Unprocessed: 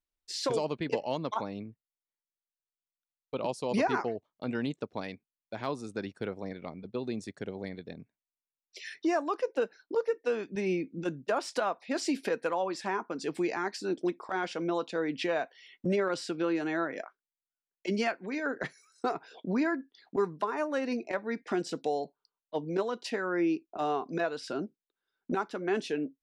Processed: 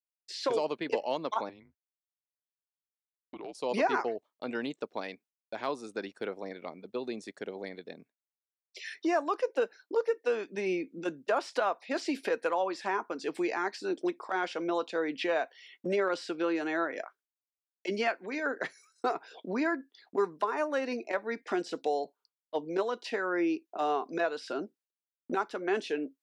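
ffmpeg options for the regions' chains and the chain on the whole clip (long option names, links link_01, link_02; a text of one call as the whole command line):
ffmpeg -i in.wav -filter_complex "[0:a]asettb=1/sr,asplit=3[link_01][link_02][link_03];[link_01]atrim=end=1.494[link_04];[link_02]atrim=start=1.49:end=3.55,asetpts=PTS-STARTPTS,afade=type=in:duration=0.004:curve=qsin,afade=type=out:start_time=2.056:duration=0.004:curve=qsin,lowpass=frequency=2200:poles=1,acompressor=threshold=-39dB:ratio=3:attack=3.2:release=140:knee=1:detection=peak,afreqshift=-190[link_05];[link_03]atrim=start=3.546[link_06];[link_04][link_05]acrossfade=duration=0.004:curve1=hsin:curve2=qsin[link_07];[link_07][link_06]acrossfade=duration=0.004:curve1=qsin:curve2=hsin,highpass=320,acrossover=split=4400[link_08][link_09];[link_09]acompressor=threshold=-51dB:ratio=4:attack=1:release=60[link_10];[link_08][link_10]amix=inputs=2:normalize=0,agate=range=-33dB:threshold=-58dB:ratio=3:detection=peak,volume=1.5dB" out.wav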